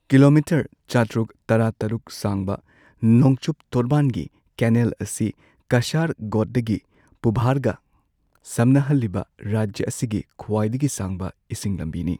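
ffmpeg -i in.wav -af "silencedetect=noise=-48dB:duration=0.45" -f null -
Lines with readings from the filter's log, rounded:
silence_start: 7.77
silence_end: 8.35 | silence_duration: 0.58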